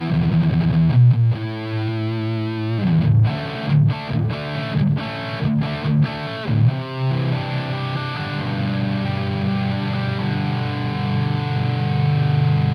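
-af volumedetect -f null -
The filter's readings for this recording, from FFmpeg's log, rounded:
mean_volume: -19.2 dB
max_volume: -6.6 dB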